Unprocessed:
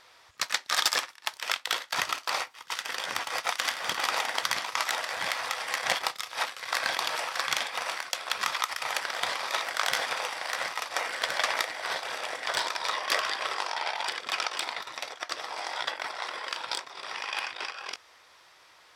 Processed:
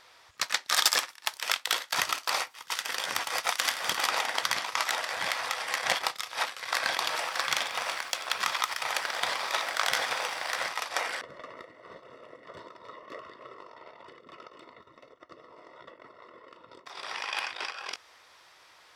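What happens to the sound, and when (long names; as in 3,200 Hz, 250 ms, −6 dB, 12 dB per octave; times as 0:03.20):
0:00.68–0:04.07: high-shelf EQ 7,000 Hz +6.5 dB
0:06.96–0:10.68: feedback echo at a low word length 91 ms, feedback 80%, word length 8 bits, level −15 dB
0:11.21–0:16.86: moving average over 55 samples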